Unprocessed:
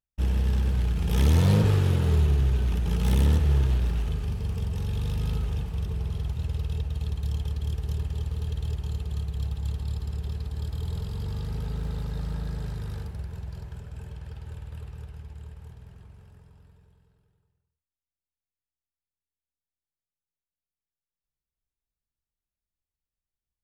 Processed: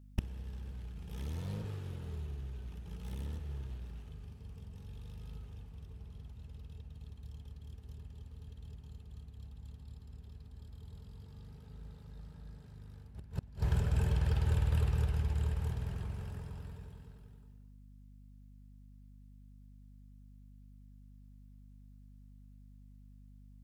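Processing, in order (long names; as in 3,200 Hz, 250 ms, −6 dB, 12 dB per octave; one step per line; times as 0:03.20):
gate with flip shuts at −28 dBFS, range −29 dB
mains hum 50 Hz, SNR 16 dB
level +9 dB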